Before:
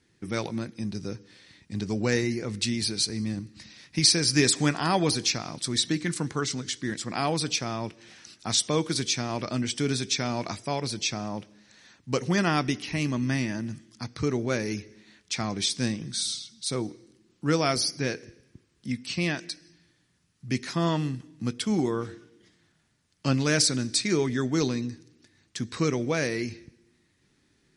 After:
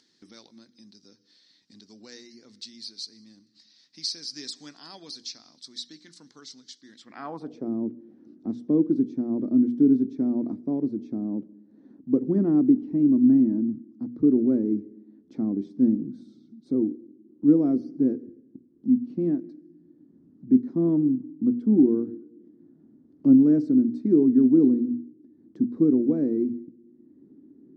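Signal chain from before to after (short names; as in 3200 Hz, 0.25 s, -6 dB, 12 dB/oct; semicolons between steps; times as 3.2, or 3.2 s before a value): notches 60/120/180/240 Hz; band-pass sweep 4500 Hz -> 310 Hz, 6.91–7.71; fifteen-band EQ 100 Hz -4 dB, 250 Hz +11 dB, 2500 Hz -8 dB, 10000 Hz -7 dB; upward compressor, threshold -46 dBFS; tilt shelf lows +7 dB, about 760 Hz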